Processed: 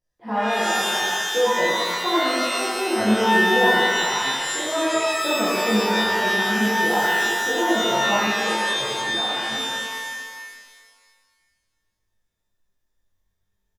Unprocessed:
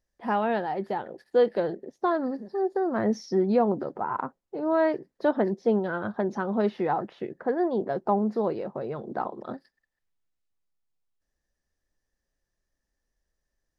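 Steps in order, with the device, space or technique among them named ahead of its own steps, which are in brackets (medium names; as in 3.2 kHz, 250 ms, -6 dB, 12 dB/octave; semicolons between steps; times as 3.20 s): 6.37–6.84 s: graphic EQ 125/500/2000 Hz +7/-10/+9 dB; double-tracked vocal (doubling 23 ms -12 dB; chorus 0.57 Hz, delay 16 ms, depth 6 ms); reverb removal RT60 1.5 s; 8.17–8.65 s: bass shelf 440 Hz -9 dB; pitch-shifted reverb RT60 1.7 s, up +12 st, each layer -2 dB, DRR -8 dB; trim -2.5 dB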